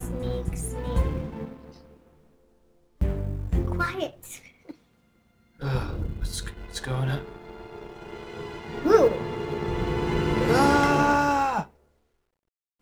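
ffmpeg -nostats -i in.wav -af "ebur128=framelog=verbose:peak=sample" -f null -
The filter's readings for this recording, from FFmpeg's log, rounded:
Integrated loudness:
  I:         -25.8 LUFS
  Threshold: -37.6 LUFS
Loudness range:
  LRA:        10.3 LU
  Threshold: -47.9 LUFS
  LRA low:   -33.2 LUFS
  LRA high:  -22.9 LUFS
Sample peak:
  Peak:       -4.9 dBFS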